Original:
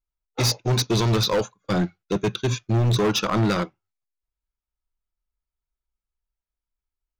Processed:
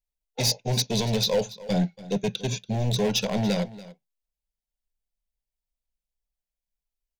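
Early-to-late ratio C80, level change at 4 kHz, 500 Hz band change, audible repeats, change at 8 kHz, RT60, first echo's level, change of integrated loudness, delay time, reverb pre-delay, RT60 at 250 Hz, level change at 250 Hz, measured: no reverb audible, −1.0 dB, −2.5 dB, 1, −0.5 dB, no reverb audible, −18.0 dB, −3.0 dB, 285 ms, no reverb audible, no reverb audible, −2.5 dB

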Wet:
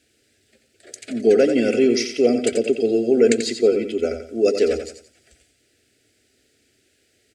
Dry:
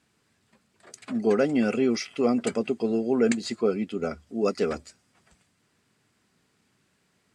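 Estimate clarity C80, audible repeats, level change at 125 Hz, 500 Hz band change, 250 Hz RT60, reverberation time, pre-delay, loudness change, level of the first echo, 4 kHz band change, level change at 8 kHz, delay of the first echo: no reverb audible, 3, −0.5 dB, +8.5 dB, no reverb audible, no reverb audible, no reverb audible, +7.0 dB, −8.0 dB, +8.5 dB, +9.0 dB, 88 ms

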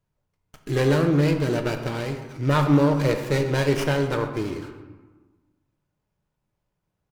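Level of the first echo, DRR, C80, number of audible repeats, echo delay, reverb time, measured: −17.0 dB, 4.5 dB, 9.0 dB, 1, 123 ms, 1.3 s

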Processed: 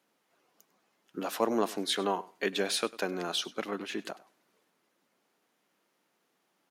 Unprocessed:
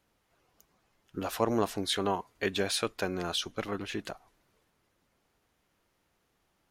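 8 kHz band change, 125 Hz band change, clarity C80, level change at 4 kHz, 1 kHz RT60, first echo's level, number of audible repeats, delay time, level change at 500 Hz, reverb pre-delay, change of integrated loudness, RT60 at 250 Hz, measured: 0.0 dB, −7.5 dB, no reverb audible, 0.0 dB, no reverb audible, −20.0 dB, 1, 99 ms, 0.0 dB, no reverb audible, 0.0 dB, no reverb audible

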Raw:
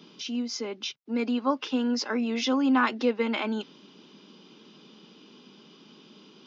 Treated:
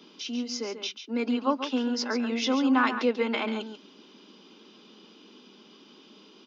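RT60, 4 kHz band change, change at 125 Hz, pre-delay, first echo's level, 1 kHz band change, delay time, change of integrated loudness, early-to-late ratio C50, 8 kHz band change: no reverb audible, +0.5 dB, can't be measured, no reverb audible, −9.5 dB, +0.5 dB, 139 ms, 0.0 dB, no reverb audible, can't be measured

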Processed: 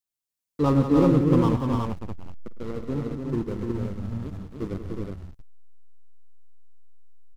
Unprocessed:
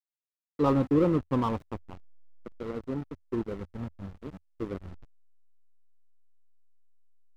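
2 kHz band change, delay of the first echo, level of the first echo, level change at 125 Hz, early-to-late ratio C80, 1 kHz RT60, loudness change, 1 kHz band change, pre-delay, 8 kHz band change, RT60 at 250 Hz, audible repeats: +3.0 dB, 50 ms, −18.0 dB, +9.0 dB, no reverb audible, no reverb audible, +5.0 dB, +3.0 dB, no reverb audible, can't be measured, no reverb audible, 6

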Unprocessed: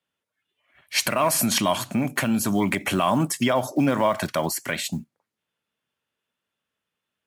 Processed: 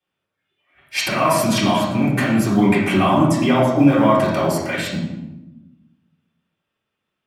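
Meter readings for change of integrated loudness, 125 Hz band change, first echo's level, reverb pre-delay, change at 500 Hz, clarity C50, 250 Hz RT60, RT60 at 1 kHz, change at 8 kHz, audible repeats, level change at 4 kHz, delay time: +6.0 dB, +9.0 dB, no echo audible, 3 ms, +6.5 dB, 2.0 dB, 1.6 s, 0.95 s, −3.0 dB, no echo audible, +2.0 dB, no echo audible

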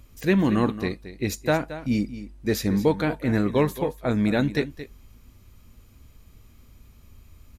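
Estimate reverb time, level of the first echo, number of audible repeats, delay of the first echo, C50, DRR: no reverb audible, −13.5 dB, 1, 223 ms, no reverb audible, no reverb audible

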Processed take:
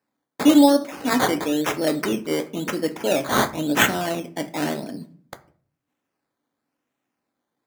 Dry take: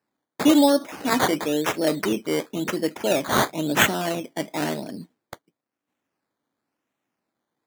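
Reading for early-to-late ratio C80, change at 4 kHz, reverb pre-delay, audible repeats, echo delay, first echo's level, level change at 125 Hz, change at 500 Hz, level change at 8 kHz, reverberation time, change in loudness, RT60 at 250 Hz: 20.5 dB, 0.0 dB, 4 ms, no echo audible, no echo audible, no echo audible, 0.0 dB, +0.5 dB, 0.0 dB, 0.45 s, +1.5 dB, 0.65 s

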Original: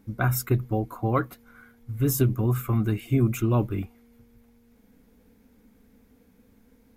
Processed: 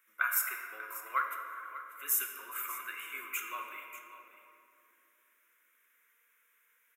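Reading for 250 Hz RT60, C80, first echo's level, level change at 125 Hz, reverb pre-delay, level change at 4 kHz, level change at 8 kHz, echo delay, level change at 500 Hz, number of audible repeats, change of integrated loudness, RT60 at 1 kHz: 3.6 s, 4.5 dB, −14.5 dB, below −40 dB, 3 ms, −4.5 dB, −0.5 dB, 590 ms, −25.0 dB, 1, −9.5 dB, 2.6 s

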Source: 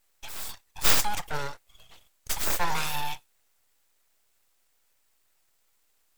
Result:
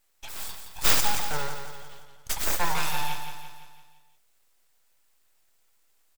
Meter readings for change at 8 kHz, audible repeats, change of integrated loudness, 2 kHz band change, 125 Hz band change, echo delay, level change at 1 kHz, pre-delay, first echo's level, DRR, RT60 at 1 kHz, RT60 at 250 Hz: +1.0 dB, 5, +1.0 dB, +1.0 dB, +1.0 dB, 170 ms, +1.0 dB, no reverb audible, −7.5 dB, no reverb audible, no reverb audible, no reverb audible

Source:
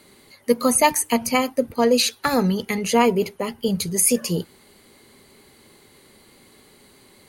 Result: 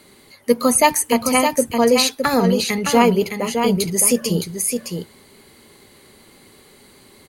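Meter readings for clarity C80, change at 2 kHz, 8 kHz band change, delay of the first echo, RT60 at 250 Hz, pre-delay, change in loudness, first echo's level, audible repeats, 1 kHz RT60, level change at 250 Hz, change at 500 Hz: no reverb audible, +3.5 dB, +3.5 dB, 614 ms, no reverb audible, no reverb audible, +3.0 dB, −6.0 dB, 1, no reverb audible, +3.5 dB, +3.5 dB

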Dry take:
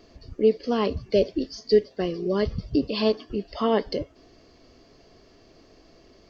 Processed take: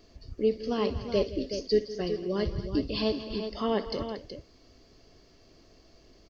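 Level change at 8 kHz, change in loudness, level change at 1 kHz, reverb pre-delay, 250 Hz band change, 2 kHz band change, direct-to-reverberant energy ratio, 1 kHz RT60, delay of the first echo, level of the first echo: can't be measured, −5.5 dB, −5.5 dB, no reverb audible, −4.5 dB, −4.5 dB, no reverb audible, no reverb audible, 61 ms, −16.5 dB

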